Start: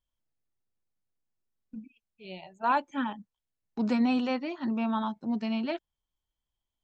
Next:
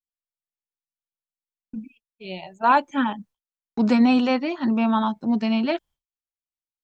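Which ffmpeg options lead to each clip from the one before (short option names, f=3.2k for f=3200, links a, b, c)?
-af "agate=range=-33dB:threshold=-53dB:ratio=3:detection=peak,volume=8.5dB"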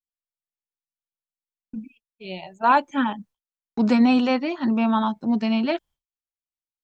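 -af anull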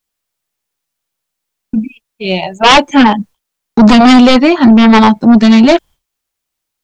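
-af "aeval=exprs='0.501*sin(PI/2*3.55*val(0)/0.501)':c=same,volume=5dB"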